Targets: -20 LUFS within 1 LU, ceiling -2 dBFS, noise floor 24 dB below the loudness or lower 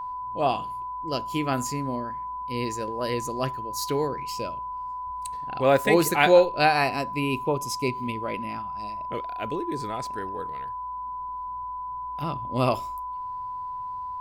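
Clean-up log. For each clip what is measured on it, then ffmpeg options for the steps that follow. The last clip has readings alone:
steady tone 1000 Hz; tone level -31 dBFS; loudness -27.0 LUFS; peak -4.0 dBFS; loudness target -20.0 LUFS
-> -af "bandreject=f=1k:w=30"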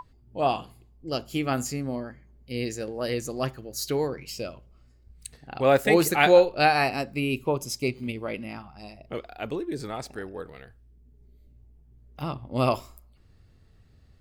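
steady tone none; loudness -26.5 LUFS; peak -4.5 dBFS; loudness target -20.0 LUFS
-> -af "volume=6.5dB,alimiter=limit=-2dB:level=0:latency=1"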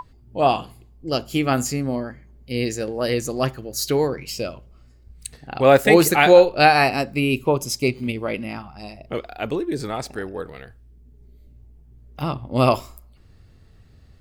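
loudness -20.5 LUFS; peak -2.0 dBFS; noise floor -51 dBFS

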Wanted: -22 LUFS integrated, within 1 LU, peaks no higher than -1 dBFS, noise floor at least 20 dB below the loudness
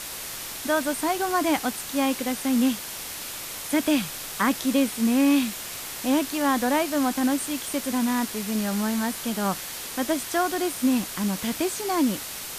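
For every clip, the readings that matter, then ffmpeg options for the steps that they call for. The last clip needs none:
noise floor -36 dBFS; noise floor target -46 dBFS; loudness -25.5 LUFS; peak -10.5 dBFS; loudness target -22.0 LUFS
-> -af "afftdn=nr=10:nf=-36"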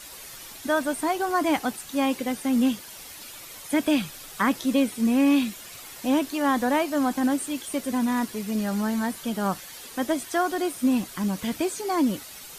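noise floor -43 dBFS; noise floor target -46 dBFS
-> -af "afftdn=nr=6:nf=-43"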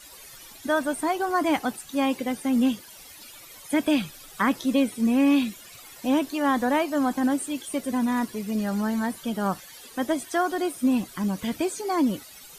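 noise floor -47 dBFS; loudness -25.5 LUFS; peak -11.5 dBFS; loudness target -22.0 LUFS
-> -af "volume=3.5dB"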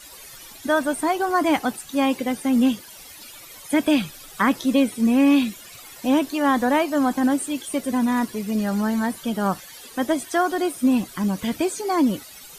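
loudness -22.0 LUFS; peak -8.0 dBFS; noise floor -43 dBFS

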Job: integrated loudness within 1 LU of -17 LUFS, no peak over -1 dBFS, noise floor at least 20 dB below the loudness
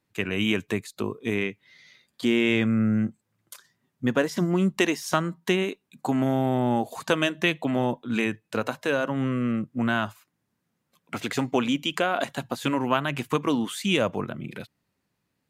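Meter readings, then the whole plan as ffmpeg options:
loudness -26.0 LUFS; peak -8.5 dBFS; loudness target -17.0 LUFS
-> -af "volume=9dB,alimiter=limit=-1dB:level=0:latency=1"

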